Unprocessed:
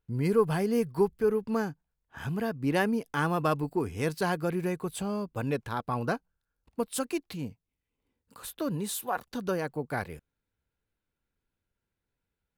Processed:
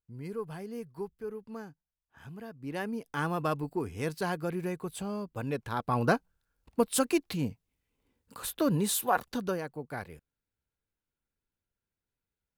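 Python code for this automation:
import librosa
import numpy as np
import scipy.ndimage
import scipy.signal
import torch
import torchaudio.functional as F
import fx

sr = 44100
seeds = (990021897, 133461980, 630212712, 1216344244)

y = fx.gain(x, sr, db=fx.line((2.51, -13.0), (3.19, -3.5), (5.51, -3.5), (6.1, 4.5), (9.25, 4.5), (9.68, -6.0)))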